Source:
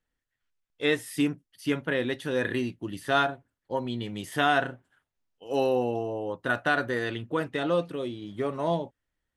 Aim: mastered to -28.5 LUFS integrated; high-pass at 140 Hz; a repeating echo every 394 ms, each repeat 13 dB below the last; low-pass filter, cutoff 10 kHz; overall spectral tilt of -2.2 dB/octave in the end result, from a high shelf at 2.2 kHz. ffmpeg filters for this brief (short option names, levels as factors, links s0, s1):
-af "highpass=140,lowpass=10000,highshelf=f=2200:g=6.5,aecho=1:1:394|788|1182:0.224|0.0493|0.0108,volume=0.891"